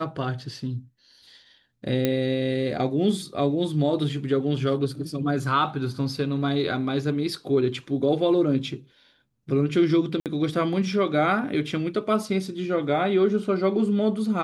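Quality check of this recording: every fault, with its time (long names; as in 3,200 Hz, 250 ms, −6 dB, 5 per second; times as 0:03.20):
0:02.05: click −10 dBFS
0:10.20–0:10.26: drop-out 58 ms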